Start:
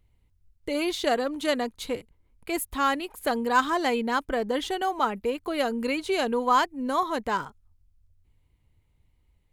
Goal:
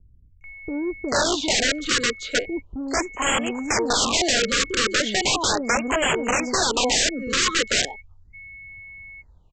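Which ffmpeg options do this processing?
-filter_complex "[0:a]aeval=exprs='val(0)+0.00447*sin(2*PI*2200*n/s)':c=same,equalizer=f=800:t=o:w=2:g=7,acrossover=split=320|4200[a][b][c];[c]adelay=410[d];[b]adelay=440[e];[a][e][d]amix=inputs=3:normalize=0,aresample=16000,aeval=exprs='(mod(10.6*val(0)+1,2)-1)/10.6':c=same,aresample=44100,acontrast=55,lowshelf=f=270:g=6,acrossover=split=340|3700[f][g][h];[f]asoftclip=type=tanh:threshold=-31.5dB[i];[i][g][h]amix=inputs=3:normalize=0,afftfilt=real='re*(1-between(b*sr/1024,750*pow(4800/750,0.5+0.5*sin(2*PI*0.37*pts/sr))/1.41,750*pow(4800/750,0.5+0.5*sin(2*PI*0.37*pts/sr))*1.41))':imag='im*(1-between(b*sr/1024,750*pow(4800/750,0.5+0.5*sin(2*PI*0.37*pts/sr))/1.41,750*pow(4800/750,0.5+0.5*sin(2*PI*0.37*pts/sr))*1.41))':win_size=1024:overlap=0.75"

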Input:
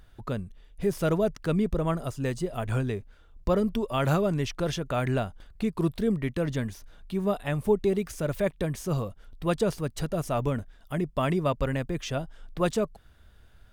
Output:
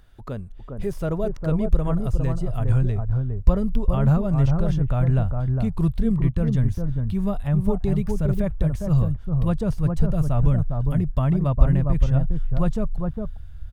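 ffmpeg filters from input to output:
-filter_complex "[0:a]asubboost=boost=10:cutoff=110,acrossover=split=1300[a][b];[a]aecho=1:1:407:0.631[c];[b]acompressor=threshold=-47dB:ratio=6[d];[c][d]amix=inputs=2:normalize=0"

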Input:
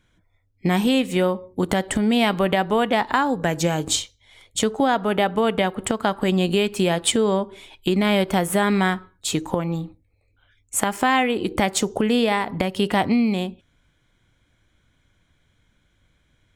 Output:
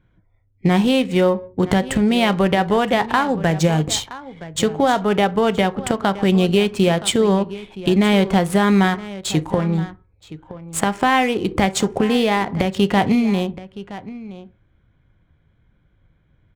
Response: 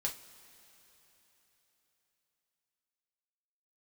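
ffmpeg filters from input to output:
-filter_complex "[0:a]aecho=1:1:970:0.158,asplit=2[a][b];[1:a]atrim=start_sample=2205,atrim=end_sample=3969,lowshelf=f=410:g=11.5[c];[b][c]afir=irnorm=-1:irlink=0,volume=-11dB[d];[a][d]amix=inputs=2:normalize=0,adynamicsmooth=sensitivity=7.5:basefreq=2k"

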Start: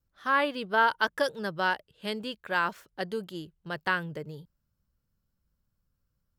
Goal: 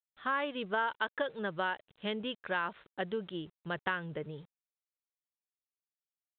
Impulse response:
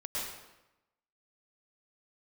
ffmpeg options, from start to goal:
-af "adynamicequalizer=threshold=0.00316:dfrequency=130:dqfactor=0.9:tfrequency=130:tqfactor=0.9:attack=5:release=100:ratio=0.375:range=2:mode=cutabove:tftype=bell,acompressor=threshold=-31dB:ratio=3,aresample=8000,aeval=exprs='val(0)*gte(abs(val(0)),0.00119)':c=same,aresample=44100"

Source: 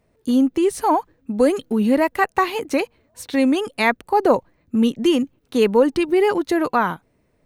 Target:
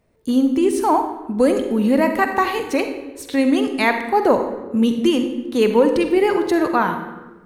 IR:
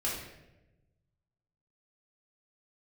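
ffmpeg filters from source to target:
-filter_complex "[0:a]asplit=2[a][b];[1:a]atrim=start_sample=2205,asetrate=33957,aresample=44100,adelay=44[c];[b][c]afir=irnorm=-1:irlink=0,volume=-13.5dB[d];[a][d]amix=inputs=2:normalize=0"

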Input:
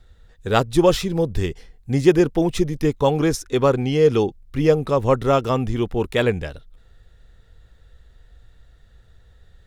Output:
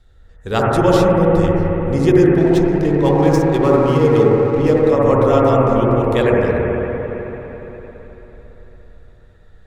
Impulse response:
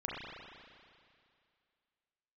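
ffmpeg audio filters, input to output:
-filter_complex "[1:a]atrim=start_sample=2205,asetrate=25137,aresample=44100[a];[0:a][a]afir=irnorm=-1:irlink=0,asettb=1/sr,asplit=3[b][c][d];[b]atrim=end=2.384[e];[c]atrim=start=2.38:end=4.89,asetpts=PTS-STARTPTS,afade=t=in:d=0.004:c=qsin,afade=t=out:st=2.506:d=0.004:c=qsin,adynamicsmooth=sensitivity=5:basefreq=2.2k[f];[d]atrim=start=4.886[g];[e][f]acrossfade=d=0.004:c1=hsin:c2=qsin[h];[h][g]acrossfade=d=0.004:c1=qsin:c2=hsin,volume=-2dB"

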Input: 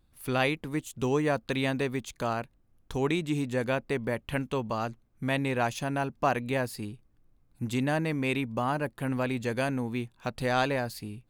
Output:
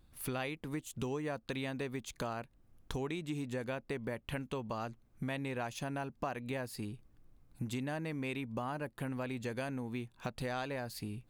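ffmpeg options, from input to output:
-af "acompressor=threshold=-40dB:ratio=4,volume=2.5dB"

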